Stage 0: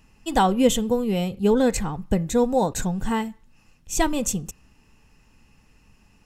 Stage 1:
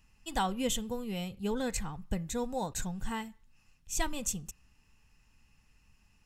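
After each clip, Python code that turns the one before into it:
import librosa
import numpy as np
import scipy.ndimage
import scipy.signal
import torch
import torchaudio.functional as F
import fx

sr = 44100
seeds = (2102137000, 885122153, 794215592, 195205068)

y = fx.peak_eq(x, sr, hz=380.0, db=-9.0, octaves=2.5)
y = y * librosa.db_to_amplitude(-7.0)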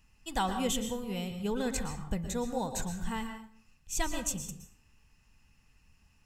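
y = fx.rev_plate(x, sr, seeds[0], rt60_s=0.53, hf_ratio=0.7, predelay_ms=105, drr_db=7.0)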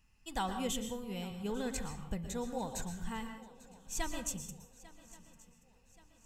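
y = fx.echo_swing(x, sr, ms=1128, ratio=3, feedback_pct=43, wet_db=-20.0)
y = y * librosa.db_to_amplitude(-5.0)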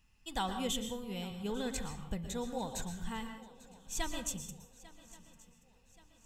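y = fx.peak_eq(x, sr, hz=3500.0, db=6.0, octaves=0.34)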